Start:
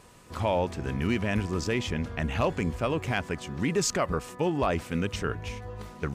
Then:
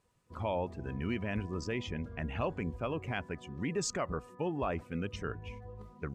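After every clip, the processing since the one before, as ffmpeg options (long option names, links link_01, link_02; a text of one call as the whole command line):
ffmpeg -i in.wav -af "afftdn=noise_reduction=15:noise_floor=-40,volume=-7.5dB" out.wav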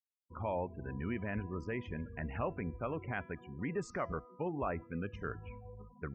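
ffmpeg -i in.wav -af "afftfilt=real='re*gte(hypot(re,im),0.00562)':imag='im*gte(hypot(re,im),0.00562)':win_size=1024:overlap=0.75,highshelf=frequency=2700:width_type=q:width=1.5:gain=-12.5,bandreject=frequency=334.9:width_type=h:width=4,bandreject=frequency=669.8:width_type=h:width=4,bandreject=frequency=1004.7:width_type=h:width=4,bandreject=frequency=1339.6:width_type=h:width=4,bandreject=frequency=1674.5:width_type=h:width=4,bandreject=frequency=2009.4:width_type=h:width=4,bandreject=frequency=2344.3:width_type=h:width=4,bandreject=frequency=2679.2:width_type=h:width=4,bandreject=frequency=3014.1:width_type=h:width=4,bandreject=frequency=3349:width_type=h:width=4,bandreject=frequency=3683.9:width_type=h:width=4,bandreject=frequency=4018.8:width_type=h:width=4,bandreject=frequency=4353.7:width_type=h:width=4,bandreject=frequency=4688.6:width_type=h:width=4,bandreject=frequency=5023.5:width_type=h:width=4,bandreject=frequency=5358.4:width_type=h:width=4,bandreject=frequency=5693.3:width_type=h:width=4,bandreject=frequency=6028.2:width_type=h:width=4,volume=-3dB" out.wav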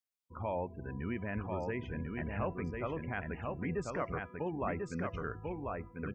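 ffmpeg -i in.wav -af "aecho=1:1:1043:0.668" out.wav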